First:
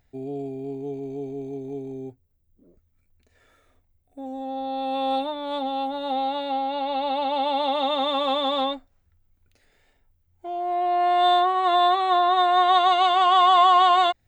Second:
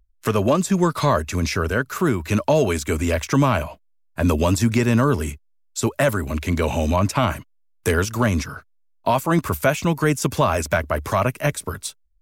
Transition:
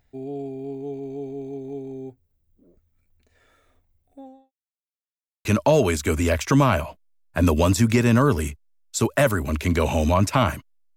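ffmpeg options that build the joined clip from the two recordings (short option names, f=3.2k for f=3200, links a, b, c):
-filter_complex "[0:a]apad=whole_dur=10.96,atrim=end=10.96,asplit=2[a][b];[a]atrim=end=4.52,asetpts=PTS-STARTPTS,afade=t=out:st=4.11:d=0.41:c=qua[c];[b]atrim=start=4.52:end=5.45,asetpts=PTS-STARTPTS,volume=0[d];[1:a]atrim=start=2.27:end=7.78,asetpts=PTS-STARTPTS,afade=t=in:d=0.004:c=hsin[e];[c][d][e]concat=n=3:v=0:a=1"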